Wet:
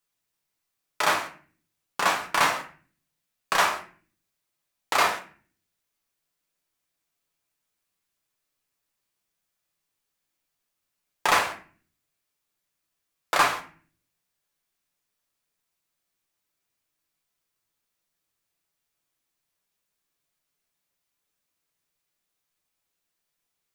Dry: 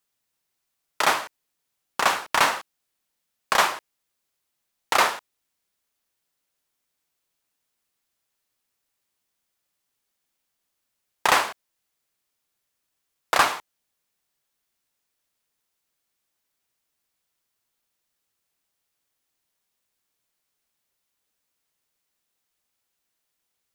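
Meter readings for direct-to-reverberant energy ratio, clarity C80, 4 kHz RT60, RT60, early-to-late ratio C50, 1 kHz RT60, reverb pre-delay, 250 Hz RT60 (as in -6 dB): 1.5 dB, 16.0 dB, 0.35 s, 0.45 s, 11.0 dB, 0.40 s, 6 ms, 0.70 s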